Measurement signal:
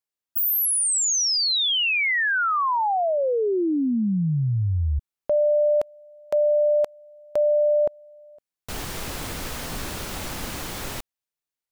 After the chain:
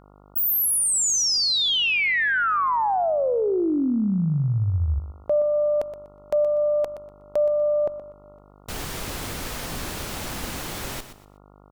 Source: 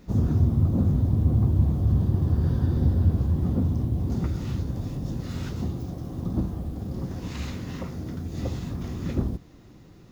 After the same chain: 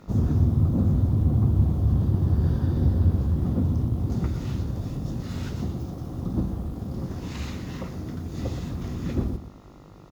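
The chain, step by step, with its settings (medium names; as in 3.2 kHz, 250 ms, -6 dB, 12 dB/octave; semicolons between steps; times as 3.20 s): Chebyshev shaper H 2 -24 dB, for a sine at -9.5 dBFS; feedback delay 122 ms, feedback 26%, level -11.5 dB; mains buzz 50 Hz, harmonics 28, -52 dBFS -3 dB/octave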